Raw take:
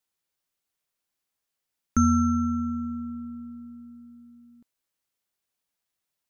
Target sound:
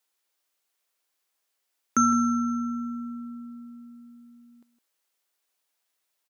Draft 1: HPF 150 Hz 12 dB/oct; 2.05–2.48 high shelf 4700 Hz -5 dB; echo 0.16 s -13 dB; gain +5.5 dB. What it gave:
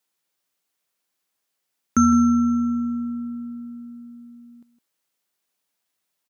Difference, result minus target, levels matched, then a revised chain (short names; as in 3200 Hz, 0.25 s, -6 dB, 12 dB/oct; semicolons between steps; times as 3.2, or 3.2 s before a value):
125 Hz band +7.0 dB
HPF 370 Hz 12 dB/oct; 2.05–2.48 high shelf 4700 Hz -5 dB; echo 0.16 s -13 dB; gain +5.5 dB